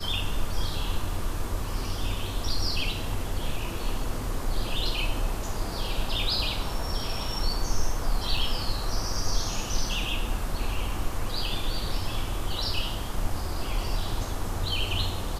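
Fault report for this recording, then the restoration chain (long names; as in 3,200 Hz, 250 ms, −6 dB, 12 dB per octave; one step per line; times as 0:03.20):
0:08.37: drop-out 4.3 ms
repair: repair the gap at 0:08.37, 4.3 ms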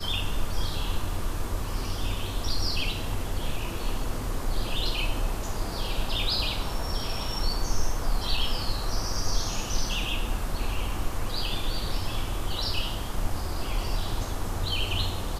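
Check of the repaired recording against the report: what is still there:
none of them is left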